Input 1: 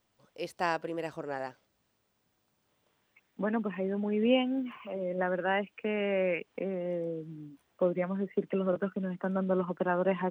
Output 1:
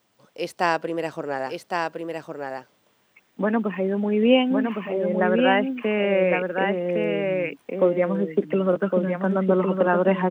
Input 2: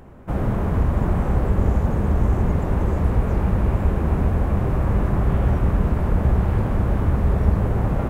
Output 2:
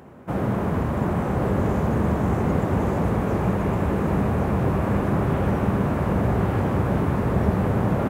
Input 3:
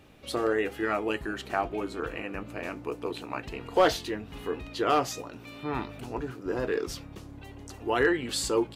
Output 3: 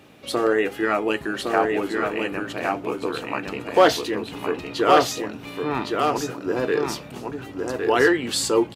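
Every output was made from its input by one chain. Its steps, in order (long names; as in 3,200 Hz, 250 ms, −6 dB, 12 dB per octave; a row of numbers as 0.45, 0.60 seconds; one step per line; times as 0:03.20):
high-pass filter 130 Hz 12 dB per octave
on a send: single-tap delay 1,111 ms −4 dB
on the sum: loudness normalisation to −23 LKFS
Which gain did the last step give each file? +8.5, +1.5, +6.5 decibels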